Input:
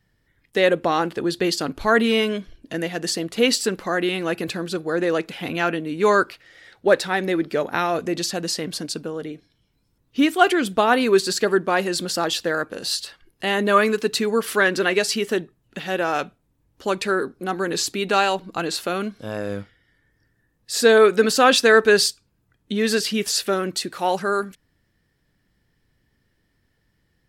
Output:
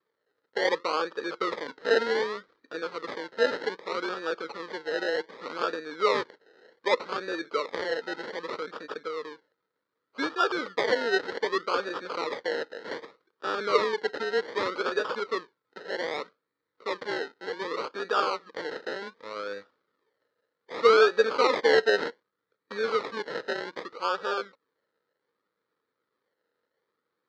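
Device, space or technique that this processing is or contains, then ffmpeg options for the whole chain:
circuit-bent sampling toy: -af "acrusher=samples=30:mix=1:aa=0.000001:lfo=1:lforange=18:lforate=0.65,highpass=470,equalizer=f=470:t=q:w=4:g=9,equalizer=f=710:t=q:w=4:g=-10,equalizer=f=1300:t=q:w=4:g=9,equalizer=f=1900:t=q:w=4:g=4,equalizer=f=2700:t=q:w=4:g=-7,equalizer=f=4200:t=q:w=4:g=5,lowpass=f=4700:w=0.5412,lowpass=f=4700:w=1.3066,volume=0.422"

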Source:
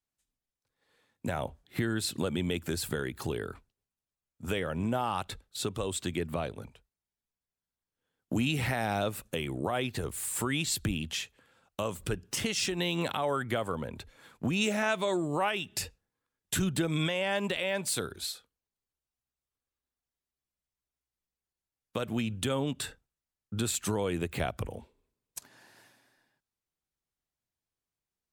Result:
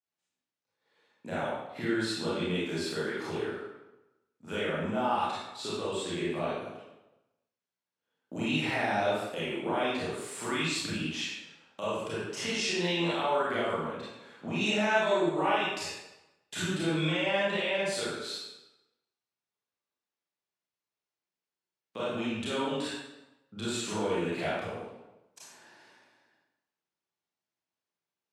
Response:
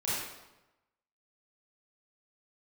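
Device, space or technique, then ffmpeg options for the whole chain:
supermarket ceiling speaker: -filter_complex "[0:a]highpass=230,lowpass=5900[s0];[1:a]atrim=start_sample=2205[s1];[s0][s1]afir=irnorm=-1:irlink=0,volume=0.596"

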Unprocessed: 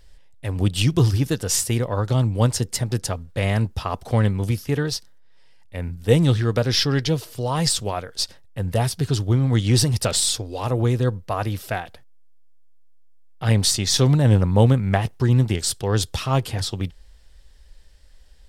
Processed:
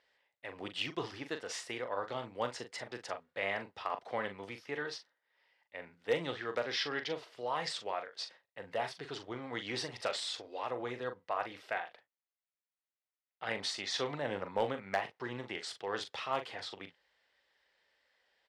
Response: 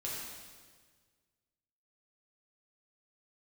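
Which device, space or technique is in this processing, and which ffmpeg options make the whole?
megaphone: -filter_complex "[0:a]highpass=550,lowpass=3100,equalizer=f=2000:t=o:w=0.29:g=5,asoftclip=type=hard:threshold=0.211,asplit=2[s0][s1];[s1]adelay=41,volume=0.355[s2];[s0][s2]amix=inputs=2:normalize=0,volume=0.376"

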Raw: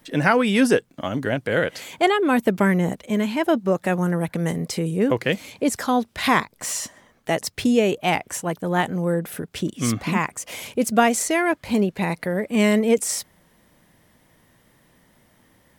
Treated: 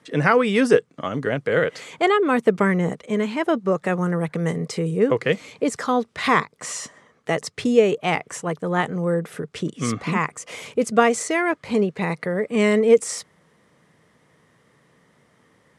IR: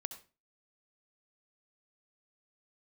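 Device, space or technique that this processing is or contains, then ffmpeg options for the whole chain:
car door speaker: -af "highpass=90,equalizer=f=150:t=q:w=4:g=6,equalizer=f=450:t=q:w=4:g=9,equalizer=f=1200:t=q:w=4:g=8,equalizer=f=2000:t=q:w=4:g=4,lowpass=f=9300:w=0.5412,lowpass=f=9300:w=1.3066,volume=0.708"

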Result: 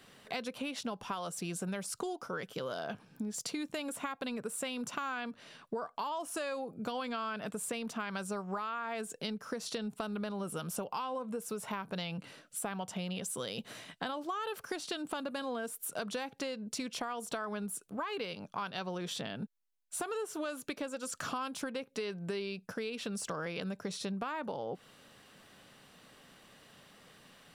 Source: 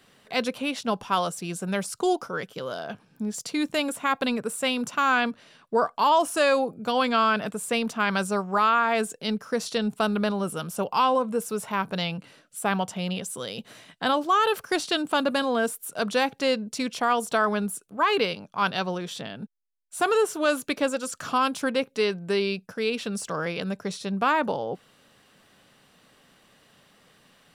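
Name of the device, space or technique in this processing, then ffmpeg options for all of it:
serial compression, peaks first: -af "acompressor=threshold=0.0282:ratio=6,acompressor=threshold=0.0141:ratio=2"

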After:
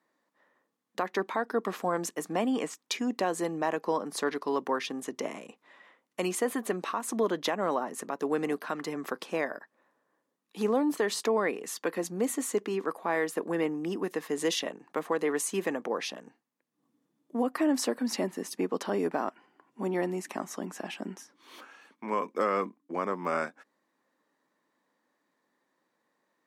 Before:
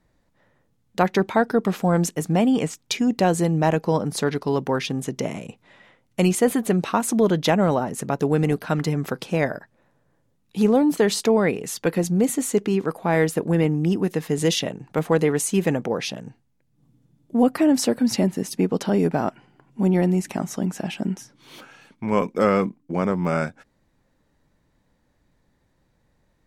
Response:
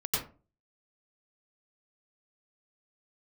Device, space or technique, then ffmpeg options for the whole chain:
laptop speaker: -af "highpass=f=250:w=0.5412,highpass=f=250:w=1.3066,equalizer=f=1100:t=o:w=0.38:g=8.5,equalizer=f=1800:t=o:w=0.25:g=5,alimiter=limit=0.299:level=0:latency=1:release=212,volume=0.447"

